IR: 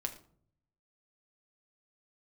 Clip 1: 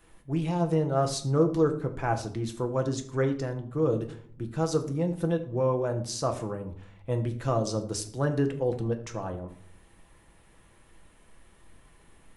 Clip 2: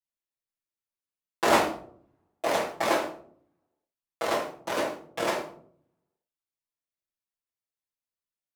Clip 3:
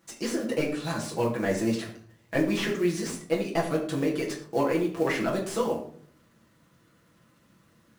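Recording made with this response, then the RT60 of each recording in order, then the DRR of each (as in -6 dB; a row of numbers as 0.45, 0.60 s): 1; 0.55, 0.55, 0.55 s; 4.0, -9.5, -4.0 dB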